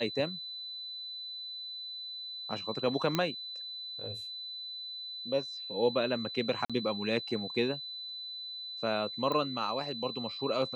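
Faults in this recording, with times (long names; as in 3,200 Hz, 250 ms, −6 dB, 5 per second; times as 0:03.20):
whistle 4,000 Hz −39 dBFS
0:03.15: click −14 dBFS
0:06.65–0:06.70: drop-out 46 ms
0:09.32: click −21 dBFS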